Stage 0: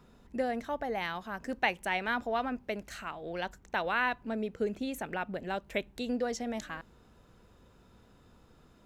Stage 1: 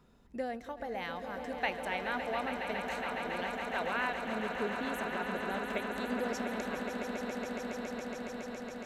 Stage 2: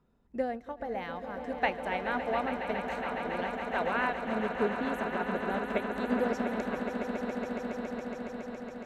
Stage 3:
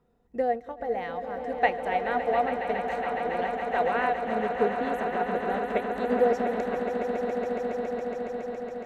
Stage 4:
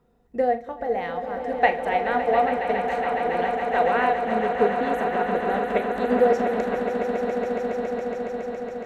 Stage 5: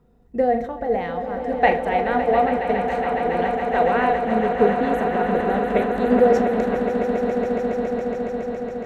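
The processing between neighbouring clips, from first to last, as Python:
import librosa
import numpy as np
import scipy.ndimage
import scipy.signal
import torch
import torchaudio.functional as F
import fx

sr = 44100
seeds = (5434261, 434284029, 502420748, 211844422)

y1 = fx.echo_swell(x, sr, ms=139, loudest=8, wet_db=-9.5)
y1 = fx.end_taper(y1, sr, db_per_s=190.0)
y1 = F.gain(torch.from_numpy(y1), -5.0).numpy()
y2 = fx.high_shelf(y1, sr, hz=2500.0, db=-11.0)
y2 = fx.upward_expand(y2, sr, threshold_db=-58.0, expansion=1.5)
y2 = F.gain(torch.from_numpy(y2), 7.5).numpy()
y3 = fx.small_body(y2, sr, hz=(480.0, 720.0, 1900.0), ring_ms=65, db=12)
y4 = fx.room_flutter(y3, sr, wall_m=6.9, rt60_s=0.23)
y4 = F.gain(torch.from_numpy(y4), 4.0).numpy()
y5 = fx.low_shelf(y4, sr, hz=320.0, db=9.0)
y5 = fx.sustainer(y5, sr, db_per_s=90.0)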